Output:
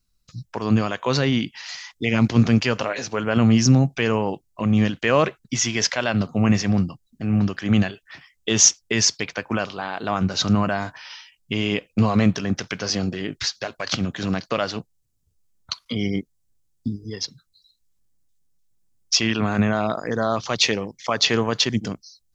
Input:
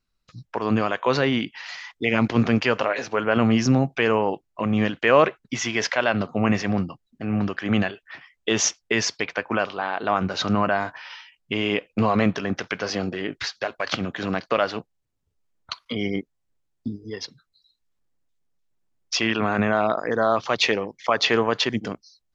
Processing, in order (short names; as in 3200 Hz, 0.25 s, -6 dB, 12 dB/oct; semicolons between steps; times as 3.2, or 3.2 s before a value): tone controls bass +10 dB, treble +14 dB; gain -3 dB